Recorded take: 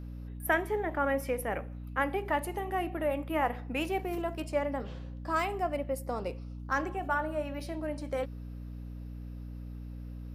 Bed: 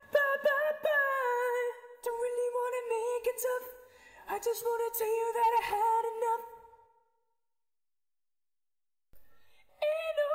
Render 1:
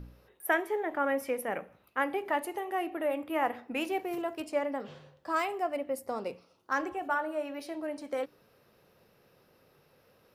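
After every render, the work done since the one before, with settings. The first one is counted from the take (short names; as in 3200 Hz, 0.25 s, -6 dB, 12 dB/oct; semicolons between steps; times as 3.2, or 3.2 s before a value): de-hum 60 Hz, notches 5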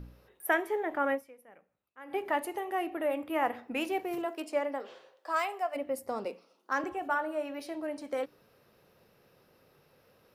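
1.14–2.15 dip -22.5 dB, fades 0.47 s exponential; 4.25–5.74 HPF 220 Hz -> 540 Hz 24 dB/oct; 6.25–6.84 elliptic high-pass 200 Hz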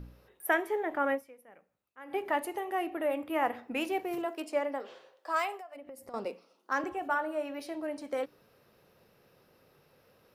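5.56–6.14 compressor 10:1, threshold -43 dBFS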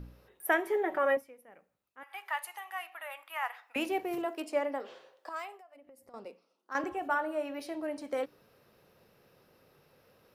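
0.66–1.17 comb 5.3 ms, depth 68%; 2.03–3.76 HPF 960 Hz 24 dB/oct; 5.29–6.75 gain -9.5 dB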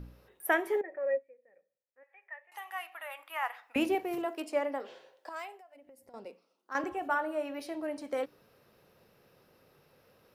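0.81–2.52 vocal tract filter e; 3.19–3.95 low shelf 290 Hz +12 dB; 4.87–6.29 notch 1200 Hz, Q 5.7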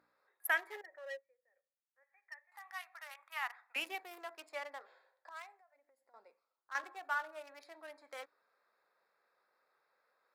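Wiener smoothing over 15 samples; HPF 1400 Hz 12 dB/oct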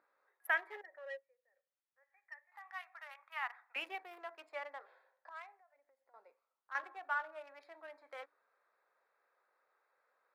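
tone controls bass -13 dB, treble -15 dB; notches 60/120/180/240/300 Hz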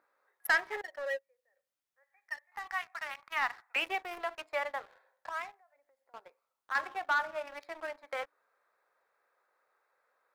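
sample leveller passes 2; in parallel at +1 dB: compressor, threshold -43 dBFS, peak gain reduction 16.5 dB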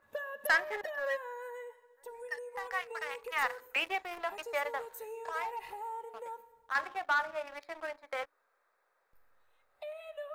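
add bed -12.5 dB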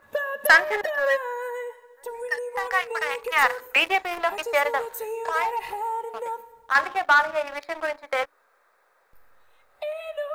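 gain +12 dB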